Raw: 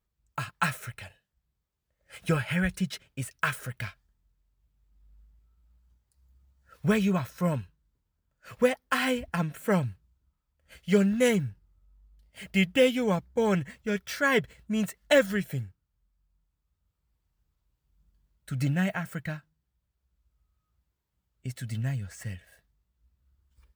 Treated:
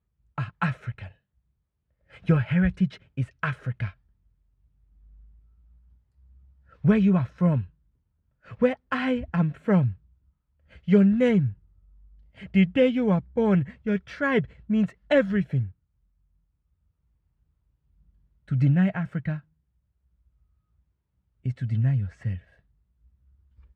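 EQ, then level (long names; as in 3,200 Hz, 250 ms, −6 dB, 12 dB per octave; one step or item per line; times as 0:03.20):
high-pass filter 59 Hz
low-pass filter 2,700 Hz 12 dB per octave
low-shelf EQ 260 Hz +12 dB
−1.5 dB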